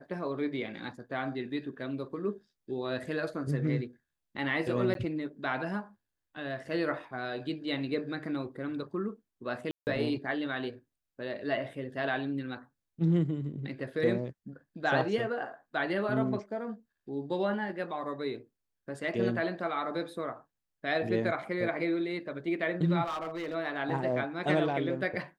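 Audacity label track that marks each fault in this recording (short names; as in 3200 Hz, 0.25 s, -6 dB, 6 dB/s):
4.940000	4.950000	gap
9.710000	9.870000	gap 0.159 s
23.040000	23.550000	clipped -31.5 dBFS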